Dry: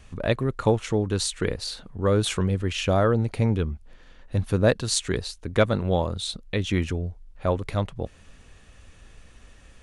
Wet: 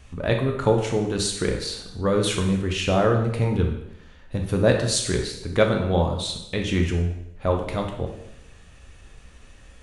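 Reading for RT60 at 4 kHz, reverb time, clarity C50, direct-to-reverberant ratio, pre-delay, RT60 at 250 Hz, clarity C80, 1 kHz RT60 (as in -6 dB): 0.75 s, 0.80 s, 5.5 dB, 2.0 dB, 5 ms, 0.85 s, 8.5 dB, 0.85 s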